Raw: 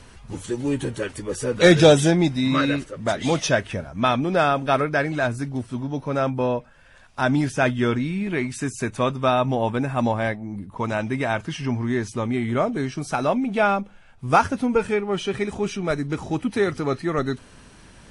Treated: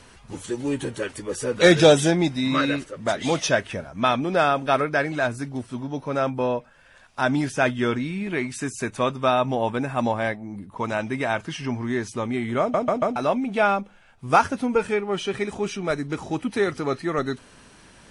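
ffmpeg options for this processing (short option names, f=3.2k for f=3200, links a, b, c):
-filter_complex "[0:a]asplit=5[a][b][c][d][e];[a]atrim=end=12.742[f];[b]atrim=start=12.598:end=12.742[g];[c]atrim=start=12.598:end=12.742[h];[d]atrim=start=12.598:end=12.742[i];[e]atrim=start=13.158[j];[f][g]acrossfade=d=0.004:c1=hsin:c2=hsin[k];[k][h]acrossfade=d=0.004:c1=hsin:c2=hsin[l];[l][i]acrossfade=d=0.004:c1=hsin:c2=hsin[m];[m][j]acrossfade=d=0.004:c1=hsin:c2=hsin,lowshelf=f=160:g=-8"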